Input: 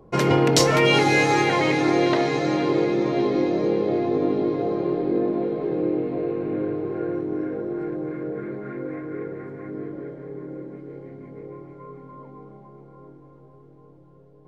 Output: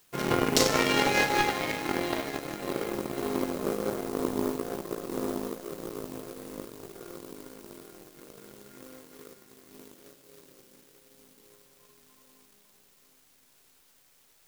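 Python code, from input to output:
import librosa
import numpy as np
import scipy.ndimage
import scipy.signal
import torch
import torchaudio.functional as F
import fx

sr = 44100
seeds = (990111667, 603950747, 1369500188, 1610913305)

y = fx.rev_schroeder(x, sr, rt60_s=0.88, comb_ms=27, drr_db=1.5)
y = fx.dmg_noise_colour(y, sr, seeds[0], colour='white', level_db=-36.0)
y = fx.power_curve(y, sr, exponent=2.0)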